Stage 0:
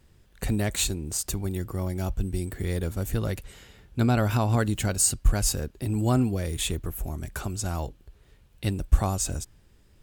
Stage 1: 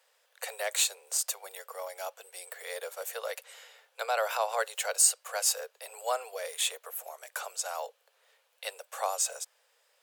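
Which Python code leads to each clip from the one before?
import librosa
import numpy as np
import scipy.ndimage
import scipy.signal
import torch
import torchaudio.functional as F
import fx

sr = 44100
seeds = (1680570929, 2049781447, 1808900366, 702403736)

y = scipy.signal.sosfilt(scipy.signal.butter(16, 470.0, 'highpass', fs=sr, output='sos'), x)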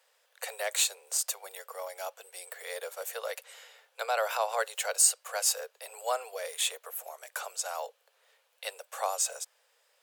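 y = x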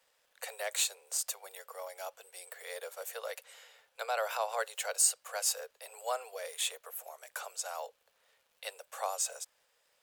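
y = fx.dmg_crackle(x, sr, seeds[0], per_s=130.0, level_db=-56.0)
y = y * 10.0 ** (-4.0 / 20.0)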